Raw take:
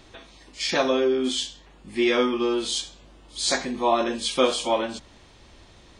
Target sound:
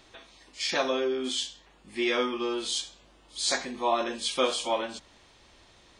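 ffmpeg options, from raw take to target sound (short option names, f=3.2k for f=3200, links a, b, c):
-af "lowshelf=f=360:g=-8,volume=-3dB"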